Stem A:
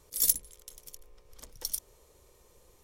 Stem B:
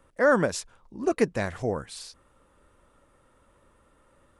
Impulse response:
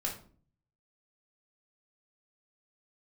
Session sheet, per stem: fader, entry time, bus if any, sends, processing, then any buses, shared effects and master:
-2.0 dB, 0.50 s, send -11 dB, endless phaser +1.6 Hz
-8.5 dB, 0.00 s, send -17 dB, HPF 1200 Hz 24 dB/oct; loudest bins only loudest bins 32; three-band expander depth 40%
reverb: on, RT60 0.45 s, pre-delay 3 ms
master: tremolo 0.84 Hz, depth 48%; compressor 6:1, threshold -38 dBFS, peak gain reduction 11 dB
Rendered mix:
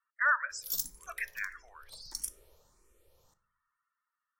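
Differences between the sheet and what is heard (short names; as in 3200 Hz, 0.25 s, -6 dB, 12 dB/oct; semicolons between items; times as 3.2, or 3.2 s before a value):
stem B -8.5 dB -> -1.5 dB; master: missing compressor 6:1, threshold -38 dBFS, peak gain reduction 11 dB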